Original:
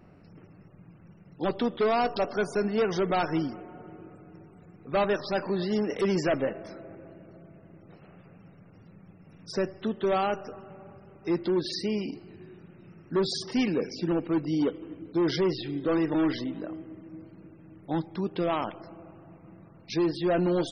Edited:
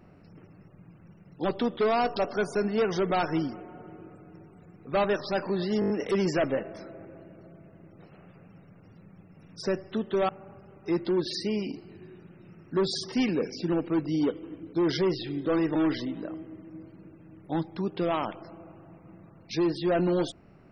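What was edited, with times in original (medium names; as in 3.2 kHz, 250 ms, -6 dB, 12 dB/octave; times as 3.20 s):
5.80 s: stutter 0.02 s, 6 plays
10.19–10.68 s: delete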